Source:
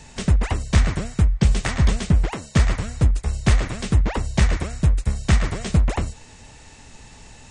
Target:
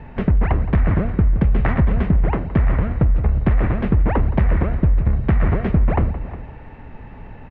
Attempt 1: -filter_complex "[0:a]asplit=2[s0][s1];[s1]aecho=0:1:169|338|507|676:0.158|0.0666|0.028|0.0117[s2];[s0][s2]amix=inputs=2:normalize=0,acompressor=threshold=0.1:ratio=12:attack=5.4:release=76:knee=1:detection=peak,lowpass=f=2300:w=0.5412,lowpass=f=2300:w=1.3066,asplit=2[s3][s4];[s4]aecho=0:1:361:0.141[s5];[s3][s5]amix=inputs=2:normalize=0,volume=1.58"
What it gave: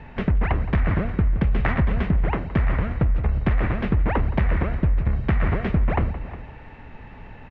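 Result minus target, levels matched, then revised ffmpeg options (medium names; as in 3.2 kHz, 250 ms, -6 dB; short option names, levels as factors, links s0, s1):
2 kHz band +5.0 dB
-filter_complex "[0:a]asplit=2[s0][s1];[s1]aecho=0:1:169|338|507|676:0.158|0.0666|0.028|0.0117[s2];[s0][s2]amix=inputs=2:normalize=0,acompressor=threshold=0.1:ratio=12:attack=5.4:release=76:knee=1:detection=peak,lowpass=f=2300:w=0.5412,lowpass=f=2300:w=1.3066,tiltshelf=f=1500:g=4.5,asplit=2[s3][s4];[s4]aecho=0:1:361:0.141[s5];[s3][s5]amix=inputs=2:normalize=0,volume=1.58"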